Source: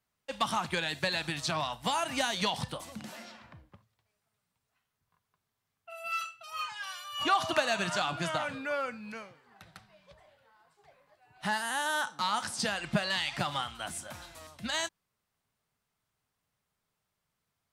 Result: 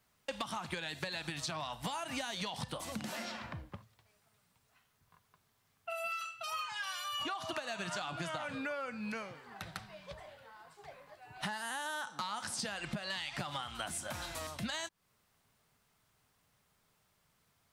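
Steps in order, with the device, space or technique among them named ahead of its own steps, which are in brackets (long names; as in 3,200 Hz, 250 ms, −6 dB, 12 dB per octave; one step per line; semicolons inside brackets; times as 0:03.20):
serial compression, leveller first (downward compressor 2 to 1, threshold −35 dBFS, peak gain reduction 8 dB; downward compressor 6 to 1, threshold −46 dBFS, peak gain reduction 16.5 dB)
level +9 dB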